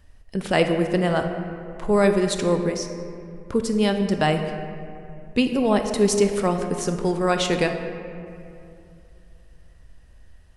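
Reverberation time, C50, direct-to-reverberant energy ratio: 2.6 s, 6.5 dB, 6.0 dB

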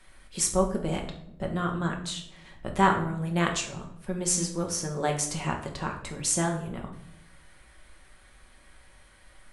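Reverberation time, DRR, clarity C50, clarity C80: 0.80 s, 1.0 dB, 8.5 dB, 12.0 dB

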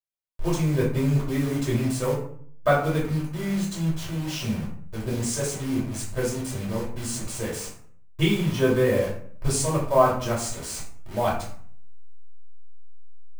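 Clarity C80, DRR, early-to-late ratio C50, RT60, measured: 9.5 dB, -7.0 dB, 5.5 dB, 0.55 s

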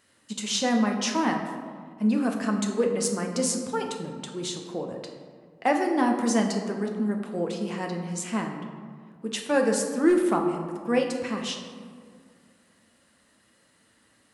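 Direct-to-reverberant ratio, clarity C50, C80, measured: 2.0 dB, 5.5 dB, 7.0 dB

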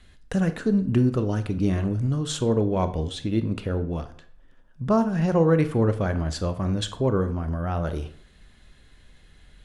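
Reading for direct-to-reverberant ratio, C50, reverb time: 10.0 dB, 13.5 dB, 0.60 s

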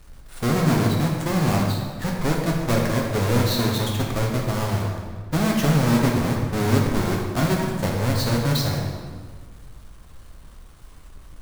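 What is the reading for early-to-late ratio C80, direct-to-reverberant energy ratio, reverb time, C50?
3.5 dB, -1.5 dB, 1.7 s, 1.5 dB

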